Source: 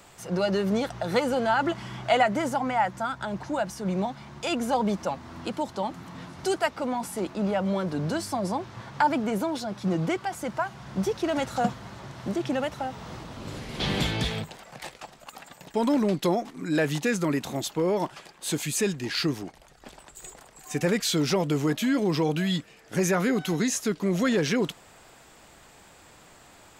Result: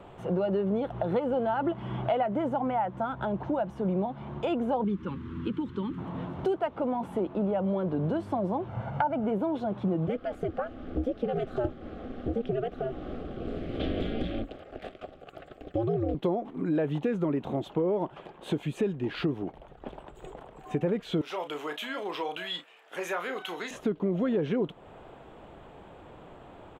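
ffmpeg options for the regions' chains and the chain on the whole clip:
-filter_complex "[0:a]asettb=1/sr,asplit=3[s0][s1][s2];[s0]atrim=end=4.844[s3];[s1]atrim=start=4.84:end=5.98,asetpts=PTS-STARTPTS,afade=t=in:d=0.004:c=qsin,afade=t=out:st=1.136:d=0.004:c=qsin,acrossover=split=5400[s4][s5];[s5]acompressor=threshold=0.002:ratio=4:attack=1:release=60[s6];[s4][s6]amix=inputs=2:normalize=0,asuperstop=centerf=680:order=4:qfactor=0.75[s7];[s2]atrim=start=5.976[s8];[s3][s7]acrossfade=d=0.004:c1=hsin:c2=qsin[s9];[s9][s8]acrossfade=d=0.004:c1=qsin:c2=hsin,asettb=1/sr,asplit=3[s10][s11][s12];[s10]atrim=end=8.684[s13];[s11]atrim=start=8.68:end=9.26,asetpts=PTS-STARTPTS,afade=t=in:d=0.004:c=qsin,afade=t=out:st=0.576:d=0.004:c=qsin,equalizer=f=3600:w=3.7:g=-6.5,aecho=1:1:1.4:0.61,atrim=end_sample=25578[s14];[s12]atrim=start=9.256[s15];[s13][s14]acrossfade=d=0.004:c1=hsin:c2=qsin[s16];[s16][s15]acrossfade=d=0.004:c1=qsin:c2=hsin,asettb=1/sr,asplit=3[s17][s18][s19];[s17]atrim=end=10.074[s20];[s18]atrim=start=10.07:end=16.15,asetpts=PTS-STARTPTS,afade=t=in:d=0.004:c=qsin,afade=t=out:st=6.076:d=0.004:c=qsin,aeval=exprs='val(0)*sin(2*PI*120*n/s)':c=same,asuperstop=centerf=950:order=4:qfactor=2.6,equalizer=f=4800:t=o:w=0.23:g=6.5[s21];[s19]atrim=start=16.146[s22];[s20][s21]acrossfade=d=0.004:c1=hsin:c2=qsin[s23];[s23][s22]acrossfade=d=0.004:c1=qsin:c2=hsin,asettb=1/sr,asplit=3[s24][s25][s26];[s24]atrim=end=21.214[s27];[s25]atrim=start=21.21:end=23.71,asetpts=PTS-STARTPTS,afade=t=in:d=0.004:c=qsin,afade=t=out:st=2.496:d=0.004:c=qsin,highpass=1100,highshelf=f=5000:g=11.5,asplit=2[s28][s29];[s29]adelay=34,volume=0.335[s30];[s28][s30]amix=inputs=2:normalize=0,atrim=end_sample=110250[s31];[s26]atrim=start=23.706[s32];[s27][s31]acrossfade=d=0.004:c1=hsin:c2=qsin[s33];[s33][s32]acrossfade=d=0.004:c1=qsin:c2=hsin,firequalizer=gain_entry='entry(250,0);entry(390,3);entry(1900,-12);entry(3200,-9);entry(4800,-29)':delay=0.05:min_phase=1,acompressor=threshold=0.02:ratio=3,volume=2"

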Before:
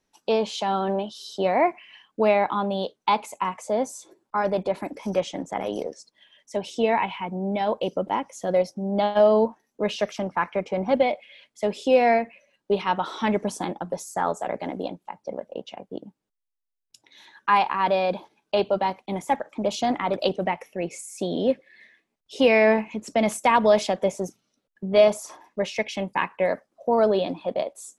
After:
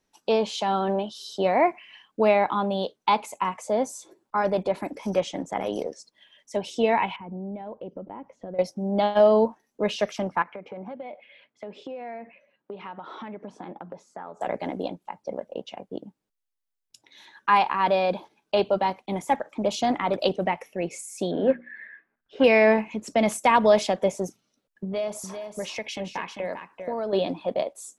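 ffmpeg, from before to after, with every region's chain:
-filter_complex "[0:a]asettb=1/sr,asplit=3[s0][s1][s2];[s0]atrim=end=7.164[s3];[s1]atrim=start=7.16:end=8.59,asetpts=PTS-STARTPTS,afade=t=in:d=0.004:c=qsin,afade=t=out:st=1.426:d=0.004:c=qsin,acompressor=threshold=0.01:ratio=3:attack=3.2:release=140:knee=1:detection=peak,lowpass=2100,tiltshelf=f=740:g=5.5[s4];[s2]atrim=start=8.586[s5];[s3][s4]acrossfade=d=0.004:c1=hsin:c2=qsin[s6];[s6][s5]acrossfade=d=0.004:c1=qsin:c2=hsin,asettb=1/sr,asplit=3[s7][s8][s9];[s7]atrim=end=10.424[s10];[s8]atrim=start=10.42:end=14.41,asetpts=PTS-STARTPTS,afade=t=in:d=0.004:c=qsin,afade=t=out:st=3.986:d=0.004:c=qsin,acompressor=threshold=0.02:ratio=8:attack=3.2:release=140:knee=1:detection=peak,highpass=110,lowpass=2300[s11];[s9]atrim=start=14.406[s12];[s10][s11]acrossfade=d=0.004:c1=hsin:c2=qsin[s13];[s13][s12]acrossfade=d=0.004:c1=qsin:c2=hsin,asettb=1/sr,asplit=3[s14][s15][s16];[s14]atrim=end=21.314[s17];[s15]atrim=start=21.31:end=22.44,asetpts=PTS-STARTPTS,afade=t=in:d=0.004:c=qsin,afade=t=out:st=1.126:d=0.004:c=qsin,lowpass=f=1600:t=q:w=8.1,bandreject=f=60:t=h:w=6,bandreject=f=120:t=h:w=6,bandreject=f=180:t=h:w=6,bandreject=f=240:t=h:w=6,bandreject=f=300:t=h:w=6,bandreject=f=360:t=h:w=6[s18];[s16]atrim=start=22.436[s19];[s17][s18]acrossfade=d=0.004:c1=hsin:c2=qsin[s20];[s20][s19]acrossfade=d=0.004:c1=qsin:c2=hsin,asettb=1/sr,asplit=3[s21][s22][s23];[s21]atrim=end=24.844[s24];[s22]atrim=start=24.84:end=27.13,asetpts=PTS-STARTPTS,afade=t=in:d=0.004:c=qsin,afade=t=out:st=2.286:d=0.004:c=qsin,acompressor=threshold=0.0355:ratio=3:attack=3.2:release=140:knee=1:detection=peak,aecho=1:1:396:0.398,atrim=end_sample=100989[s25];[s23]atrim=start=27.126[s26];[s24][s25]acrossfade=d=0.004:c1=hsin:c2=qsin[s27];[s27][s26]acrossfade=d=0.004:c1=qsin:c2=hsin"

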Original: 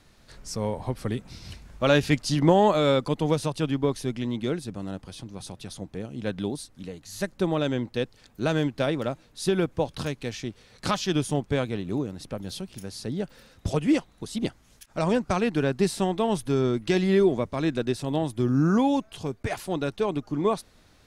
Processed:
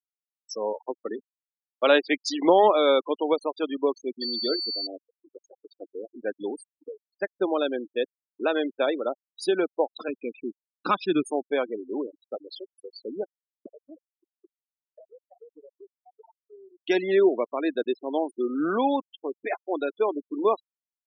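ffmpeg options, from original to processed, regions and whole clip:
-filter_complex "[0:a]asettb=1/sr,asplit=3[s0][s1][s2];[s0]atrim=end=0.734[s3];[s1]atrim=start=0.73:end=3.1,asetpts=PTS-STARTPTS,afade=t=in:d=0.004:c=qsin,afade=t=out:st=2.366:d=0.004:c=qsin,bandreject=f=50:t=h:w=6,bandreject=f=100:t=h:w=6,bandreject=f=150:t=h:w=6,bandreject=f=200:t=h:w=6,bandreject=f=250:t=h:w=6,agate=range=0.0224:threshold=0.0224:ratio=3:release=100:detection=peak[s4];[s2]atrim=start=3.096[s5];[s3][s4]acrossfade=d=0.004:c1=hsin:c2=qsin[s6];[s6][s5]acrossfade=d=0.004:c1=qsin:c2=hsin,asettb=1/sr,asplit=3[s7][s8][s9];[s7]atrim=end=4.214[s10];[s8]atrim=start=4.21:end=4.87,asetpts=PTS-STARTPTS,afade=t=in:d=0.004:c=qsin,afade=t=out:st=0.656:d=0.004:c=qsin,highshelf=f=4800:g=2.5,aeval=exprs='val(0)+0.0251*sin(2*PI*4500*n/s)':c=same,asplit=2[s11][s12];[s12]adelay=26,volume=0.211[s13];[s11][s13]amix=inputs=2:normalize=0,atrim=end_sample=29106[s14];[s9]atrim=start=4.866[s15];[s10][s14]acrossfade=d=0.004:c1=hsin:c2=qsin[s16];[s16][s15]acrossfade=d=0.004:c1=qsin:c2=hsin,asettb=1/sr,asplit=3[s17][s18][s19];[s17]atrim=end=10.084[s20];[s18]atrim=start=10.08:end=11.26,asetpts=PTS-STARTPTS,afade=t=in:d=0.004:c=qsin,afade=t=out:st=1.176:d=0.004:c=qsin,aemphasis=mode=reproduction:type=bsi,aecho=1:1:0.8:0.45,atrim=end_sample=52038[s21];[s19]atrim=start=11.256[s22];[s20][s21]acrossfade=d=0.004:c1=hsin:c2=qsin[s23];[s23][s22]acrossfade=d=0.004:c1=qsin:c2=hsin,asettb=1/sr,asplit=3[s24][s25][s26];[s24]atrim=end=13.684[s27];[s25]atrim=start=13.68:end=16.8,asetpts=PTS-STARTPTS,afade=t=in:d=0.004:c=qsin,afade=t=out:st=3.116:d=0.004:c=qsin,lowpass=f=1400:p=1,acompressor=threshold=0.0112:ratio=4:attack=3.2:release=140:knee=1:detection=peak,aeval=exprs='max(val(0),0)':c=same[s28];[s26]atrim=start=16.796[s29];[s27][s28]acrossfade=d=0.004:c1=hsin:c2=qsin[s30];[s30][s29]acrossfade=d=0.004:c1=qsin:c2=hsin,highpass=f=320:w=0.5412,highpass=f=320:w=1.3066,afftfilt=real='re*gte(hypot(re,im),0.0398)':imag='im*gte(hypot(re,im),0.0398)':win_size=1024:overlap=0.75,agate=range=0.0224:threshold=0.00251:ratio=3:detection=peak,volume=1.33"

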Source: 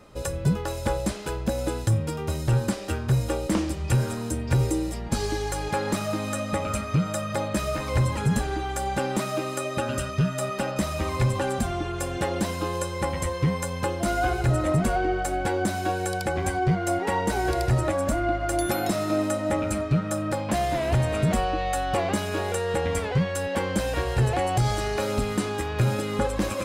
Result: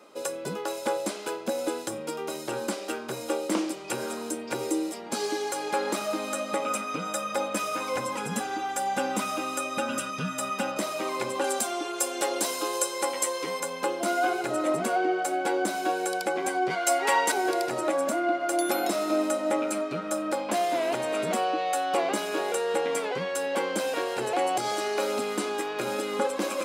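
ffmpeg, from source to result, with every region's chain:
-filter_complex "[0:a]asettb=1/sr,asplit=3[s0][s1][s2];[s0]atrim=end=6.654[s3];[s1]atrim=start=6.65:end=10.77,asetpts=PTS-STARTPTS,afade=t=in:d=0.004:c=qsin,afade=t=out:st=4.116:d=0.004:c=qsin,bandreject=f=4300:w=10,asubboost=boost=11:cutoff=120,aecho=1:1:4:0.5,atrim=end_sample=181692[s4];[s2]atrim=start=10.766[s5];[s3][s4]acrossfade=d=0.004:c1=hsin:c2=qsin[s6];[s6][s5]acrossfade=d=0.004:c1=qsin:c2=hsin,asettb=1/sr,asplit=3[s7][s8][s9];[s7]atrim=end=11.444[s10];[s8]atrim=start=11.44:end=13.6,asetpts=PTS-STARTPTS,afade=t=in:d=0.004:c=qsin,afade=t=out:st=2.156:d=0.004:c=qsin,highpass=180,bass=f=250:g=-7,treble=f=4000:g=9[s11];[s9]atrim=start=13.596[s12];[s10][s11]acrossfade=d=0.004:c1=hsin:c2=qsin[s13];[s13][s12]acrossfade=d=0.004:c1=qsin:c2=hsin,asettb=1/sr,asplit=3[s14][s15][s16];[s14]atrim=end=16.704[s17];[s15]atrim=start=16.7:end=17.32,asetpts=PTS-STARTPTS,afade=t=in:d=0.004:c=qsin,afade=t=out:st=0.616:d=0.004:c=qsin,tiltshelf=f=690:g=-7.5,aecho=1:1:7.3:0.48,atrim=end_sample=27342[s18];[s16]atrim=start=17.316[s19];[s17][s18]acrossfade=d=0.004:c1=hsin:c2=qsin[s20];[s20][s19]acrossfade=d=0.004:c1=qsin:c2=hsin,highpass=f=270:w=0.5412,highpass=f=270:w=1.3066,bandreject=f=1800:w=12"

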